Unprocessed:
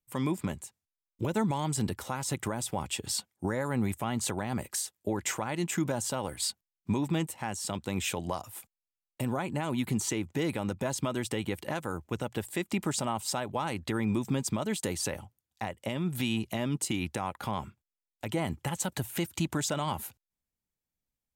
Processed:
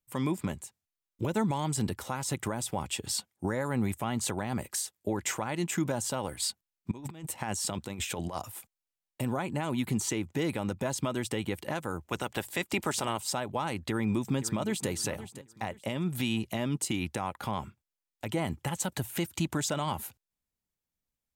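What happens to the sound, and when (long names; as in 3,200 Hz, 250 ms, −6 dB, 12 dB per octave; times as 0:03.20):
0:06.91–0:08.52: compressor whose output falls as the input rises −35 dBFS, ratio −0.5
0:12.07–0:13.18: ceiling on every frequency bin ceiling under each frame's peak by 13 dB
0:13.89–0:14.89: delay throw 520 ms, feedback 30%, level −14 dB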